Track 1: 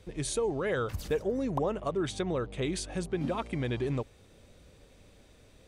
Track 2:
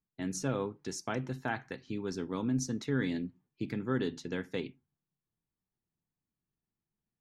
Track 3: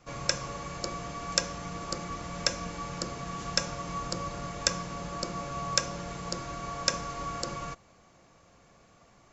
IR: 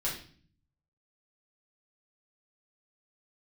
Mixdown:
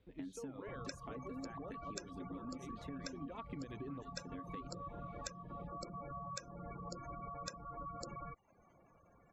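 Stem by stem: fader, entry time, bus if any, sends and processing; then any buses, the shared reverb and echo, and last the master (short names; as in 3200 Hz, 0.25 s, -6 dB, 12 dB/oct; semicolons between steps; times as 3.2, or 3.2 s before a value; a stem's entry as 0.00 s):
3.02 s -16 dB -> 3.24 s -4 dB, 0.00 s, bus A, no send, LPF 4600 Hz 24 dB/oct
-6.5 dB, 0.00 s, bus A, no send, compressor, threshold -35 dBFS, peak gain reduction 9.5 dB
-5.0 dB, 0.60 s, no bus, no send, spectral gate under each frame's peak -15 dB strong
bus A: 0.0 dB, bell 270 Hz +12 dB 0.21 oct; compressor 1.5:1, threshold -38 dBFS, peak gain reduction 4.5 dB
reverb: off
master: bell 5200 Hz -6.5 dB 0.72 oct; reverb removal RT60 0.54 s; compressor 6:1, threshold -43 dBFS, peak gain reduction 14 dB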